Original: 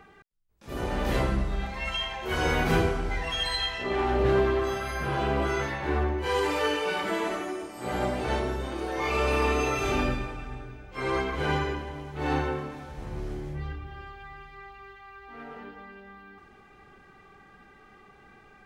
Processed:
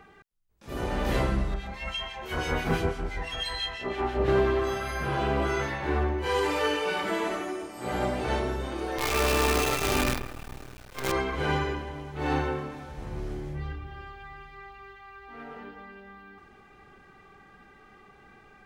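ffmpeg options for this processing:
-filter_complex "[0:a]asettb=1/sr,asplit=3[s0][s1][s2];[s0]atrim=end=1.544[s3];[s1]atrim=start=1.54:end=4.28,asetpts=PTS-STARTPTS,afade=t=in:d=0.004:c=qsin,afade=t=out:st=2.736:d=0.004:c=qsin,acrossover=split=2000[s4][s5];[s4]aeval=exprs='val(0)*(1-0.7/2+0.7/2*cos(2*PI*6*n/s))':c=same[s6];[s5]aeval=exprs='val(0)*(1-0.7/2-0.7/2*cos(2*PI*6*n/s))':c=same[s7];[s6][s7]amix=inputs=2:normalize=0[s8];[s2]atrim=start=4.276[s9];[s3][s8]acrossfade=d=0.004:c1=hsin:c2=qsin[s10];[s10][s9]acrossfade=d=0.004:c1=qsin:c2=hsin,asettb=1/sr,asplit=3[s11][s12][s13];[s11]atrim=end=8.984[s14];[s12]atrim=start=8.98:end=11.12,asetpts=PTS-STARTPTS,afade=t=in:d=0.004:c=qsin,afade=t=out:st=2.136:d=0.004:c=qsin,acrusher=bits=5:dc=4:mix=0:aa=0.000001[s15];[s13]atrim=start=11.116[s16];[s14][s15]acrossfade=d=0.004:c1=hsin:c2=qsin[s17];[s17][s16]acrossfade=d=0.004:c1=qsin:c2=hsin"

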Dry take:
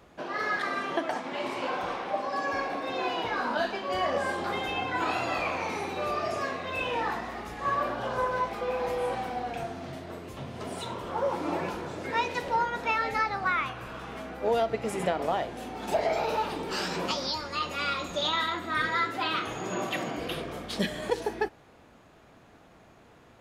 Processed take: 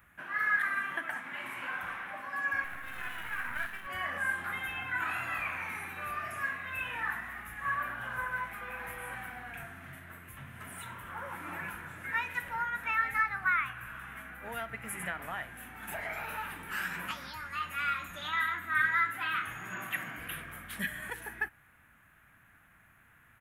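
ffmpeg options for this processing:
-filter_complex "[0:a]asettb=1/sr,asplit=3[s0][s1][s2];[s0]atrim=end=2.644[s3];[s1]atrim=start=2.64:end=3.87,asetpts=PTS-STARTPTS,afade=t=in:d=0.004:c=qsin,afade=t=out:st=1.226:d=0.004:c=qsin,aeval=exprs='max(val(0),0)':c=same[s4];[s2]atrim=start=3.866[s5];[s3][s4]acrossfade=d=0.004:c1=hsin:c2=qsin[s6];[s6][s5]acrossfade=d=0.004:c1=qsin:c2=hsin,firequalizer=gain_entry='entry(100,0);entry(420,-17);entry(1600,10);entry(4600,-16);entry(11000,14)':delay=0.05:min_phase=1,volume=0.531"

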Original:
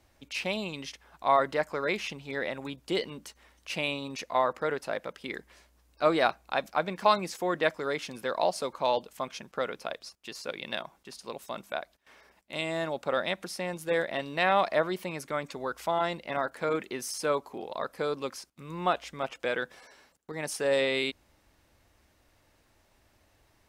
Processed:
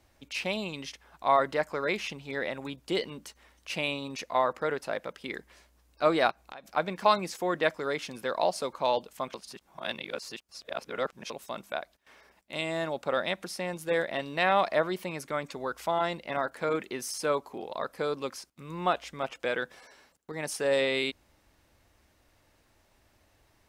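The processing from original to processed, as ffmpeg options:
-filter_complex "[0:a]asplit=3[s0][s1][s2];[s0]afade=t=out:st=6.3:d=0.02[s3];[s1]acompressor=threshold=0.01:ratio=10:attack=3.2:release=140:knee=1:detection=peak,afade=t=in:st=6.3:d=0.02,afade=t=out:st=6.75:d=0.02[s4];[s2]afade=t=in:st=6.75:d=0.02[s5];[s3][s4][s5]amix=inputs=3:normalize=0,asplit=3[s6][s7][s8];[s6]atrim=end=9.342[s9];[s7]atrim=start=9.338:end=11.302,asetpts=PTS-STARTPTS,areverse[s10];[s8]atrim=start=11.298[s11];[s9][s10]acrossfade=d=0.004:c1=hsin:c2=hsin[s12];[s12][s11]acrossfade=d=0.004:c1=hsin:c2=hsin"

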